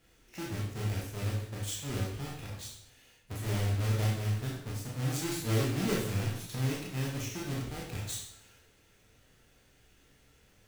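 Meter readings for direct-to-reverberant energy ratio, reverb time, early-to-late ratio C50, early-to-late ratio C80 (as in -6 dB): -4.5 dB, 0.70 s, 2.5 dB, 6.0 dB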